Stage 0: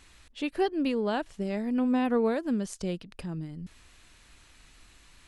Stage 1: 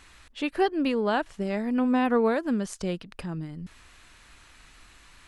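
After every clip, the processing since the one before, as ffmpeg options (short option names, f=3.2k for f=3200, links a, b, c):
-af "equalizer=f=1.3k:t=o:w=1.8:g=5.5,volume=1.5dB"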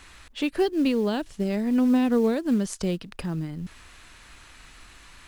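-filter_complex "[0:a]acrossover=split=460|3000[a][b][c];[b]acompressor=threshold=-43dB:ratio=3[d];[a][d][c]amix=inputs=3:normalize=0,asplit=2[e][f];[f]acrusher=bits=5:mode=log:mix=0:aa=0.000001,volume=-4dB[g];[e][g]amix=inputs=2:normalize=0"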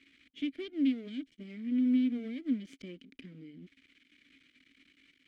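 -filter_complex "[0:a]aeval=exprs='max(val(0),0)':c=same,asplit=3[a][b][c];[a]bandpass=f=270:t=q:w=8,volume=0dB[d];[b]bandpass=f=2.29k:t=q:w=8,volume=-6dB[e];[c]bandpass=f=3.01k:t=q:w=8,volume=-9dB[f];[d][e][f]amix=inputs=3:normalize=0,volume=3.5dB"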